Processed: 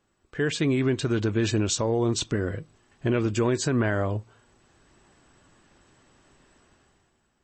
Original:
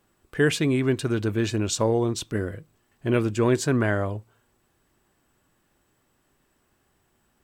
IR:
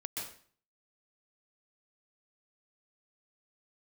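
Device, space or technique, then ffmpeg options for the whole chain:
low-bitrate web radio: -af "dynaudnorm=f=120:g=11:m=13dB,alimiter=limit=-11.5dB:level=0:latency=1:release=232,volume=-3.5dB" -ar 24000 -c:a libmp3lame -b:a 32k

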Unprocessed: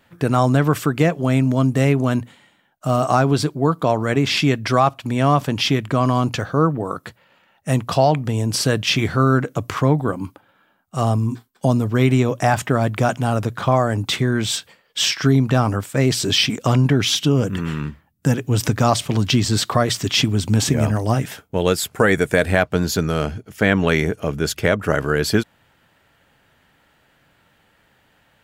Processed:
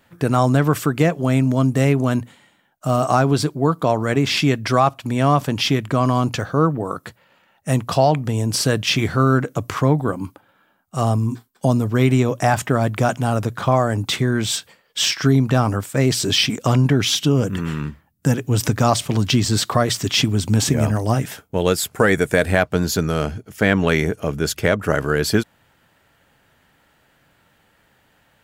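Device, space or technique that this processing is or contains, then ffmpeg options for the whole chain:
exciter from parts: -filter_complex "[0:a]asplit=2[a][b];[b]highpass=f=2.4k:p=1,asoftclip=type=tanh:threshold=-23.5dB,highpass=3.4k,volume=-8.5dB[c];[a][c]amix=inputs=2:normalize=0"

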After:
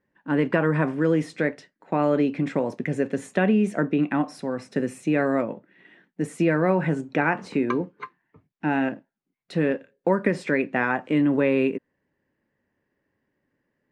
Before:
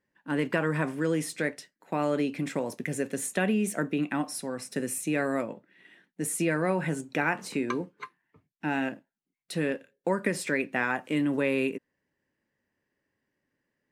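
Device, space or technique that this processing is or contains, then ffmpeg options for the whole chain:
through cloth: -af "lowpass=6.6k,highshelf=f=3k:g=-13.5,volume=6.5dB"

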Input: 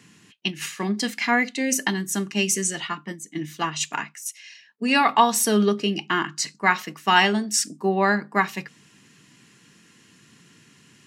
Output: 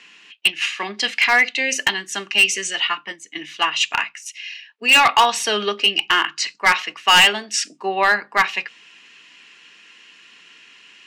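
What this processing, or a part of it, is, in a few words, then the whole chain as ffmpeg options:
megaphone: -af "highpass=570,lowpass=4k,equalizer=f=2.7k:t=o:w=0.6:g=8.5,highshelf=f=3k:g=5,asoftclip=type=hard:threshold=-13dB,volume=5dB"

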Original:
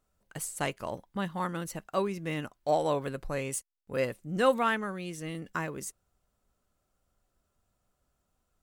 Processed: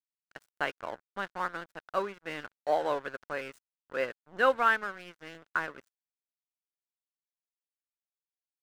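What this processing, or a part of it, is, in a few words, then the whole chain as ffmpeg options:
pocket radio on a weak battery: -af "highpass=370,lowpass=3.7k,aeval=exprs='sgn(val(0))*max(abs(val(0))-0.00596,0)':c=same,equalizer=f=1.5k:t=o:w=0.43:g=9"

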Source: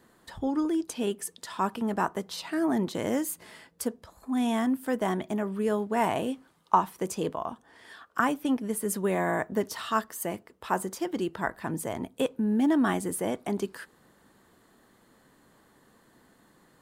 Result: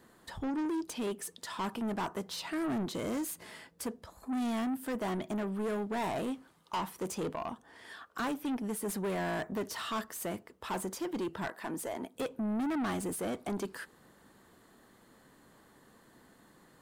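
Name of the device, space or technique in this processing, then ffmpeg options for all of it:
saturation between pre-emphasis and de-emphasis: -filter_complex "[0:a]asettb=1/sr,asplit=3[a][b][c];[a]atrim=end=11.474[d];[b]atrim=start=11.47:end=12.15,asetpts=PTS-STARTPTS,afade=t=in:d=0.004:c=qsin,afade=t=out:st=0.676:d=0.004:c=qsin,highpass=280[e];[c]atrim=start=12.146[f];[d][e]acrossfade=d=0.004:c1=hsin:c2=qsin[g];[g][f]acrossfade=d=0.004:c1=qsin:c2=hsin,highshelf=f=5.8k:g=7.5,asoftclip=type=tanh:threshold=-30.5dB,highshelf=f=5.8k:g=-7.5"

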